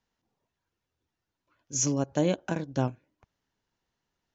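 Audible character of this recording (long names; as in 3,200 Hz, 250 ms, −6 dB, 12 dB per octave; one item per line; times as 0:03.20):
background noise floor −86 dBFS
spectral slope −5.0 dB per octave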